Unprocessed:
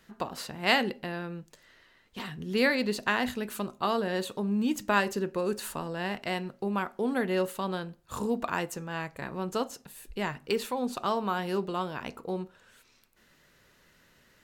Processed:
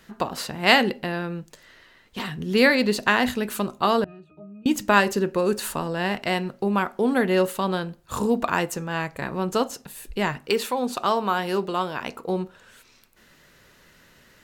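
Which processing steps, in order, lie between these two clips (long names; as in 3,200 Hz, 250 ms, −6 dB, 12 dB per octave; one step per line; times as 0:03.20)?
0:04.04–0:04.66: resonances in every octave D#, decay 0.36 s
0:10.41–0:12.29: low-shelf EQ 230 Hz −7.5 dB
level +7.5 dB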